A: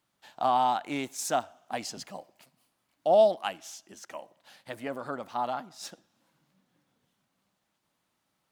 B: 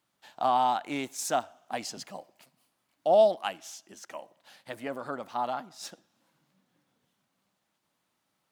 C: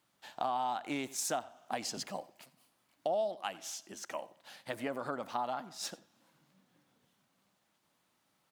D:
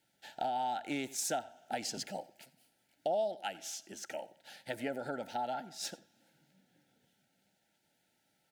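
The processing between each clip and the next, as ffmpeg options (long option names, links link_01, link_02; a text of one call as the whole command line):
ffmpeg -i in.wav -af "lowshelf=frequency=73:gain=-8" out.wav
ffmpeg -i in.wav -af "aecho=1:1:89:0.0794,acompressor=threshold=-35dB:ratio=4,volume=2dB" out.wav
ffmpeg -i in.wav -af "asuperstop=centerf=1100:order=20:qfactor=2.8" out.wav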